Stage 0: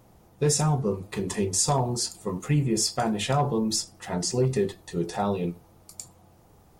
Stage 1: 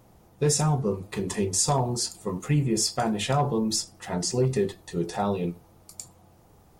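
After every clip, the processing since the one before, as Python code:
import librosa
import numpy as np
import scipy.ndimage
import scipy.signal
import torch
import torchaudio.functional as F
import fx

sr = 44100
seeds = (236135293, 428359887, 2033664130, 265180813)

y = x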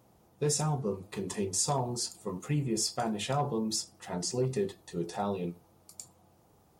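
y = fx.highpass(x, sr, hz=110.0, slope=6)
y = fx.peak_eq(y, sr, hz=1900.0, db=-2.5, octaves=0.77)
y = y * 10.0 ** (-5.5 / 20.0)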